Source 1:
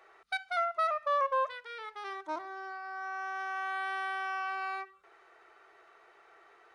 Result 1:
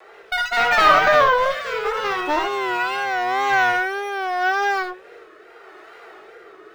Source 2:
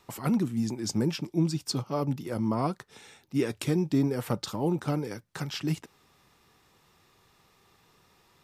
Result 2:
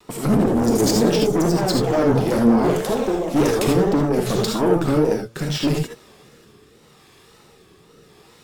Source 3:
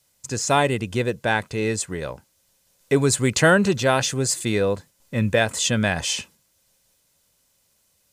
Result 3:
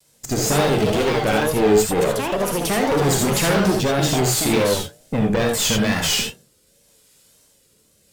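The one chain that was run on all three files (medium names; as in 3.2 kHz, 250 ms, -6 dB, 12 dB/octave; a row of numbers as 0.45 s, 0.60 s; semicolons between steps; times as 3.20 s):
peaking EQ 330 Hz +7.5 dB 1.9 oct; rotary cabinet horn 0.8 Hz; compression 2.5:1, threshold -22 dBFS; treble shelf 3.7 kHz +5.5 dB; band-stop 6.1 kHz, Q 14; de-hum 120 Hz, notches 7; ever faster or slower copies 135 ms, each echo +5 st, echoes 2, each echo -6 dB; valve stage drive 27 dB, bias 0.65; gated-style reverb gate 100 ms rising, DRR 1.5 dB; wow and flutter 97 cents; decimation joined by straight lines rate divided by 2×; normalise loudness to -19 LUFS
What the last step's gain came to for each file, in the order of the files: +17.0 dB, +12.5 dB, +10.0 dB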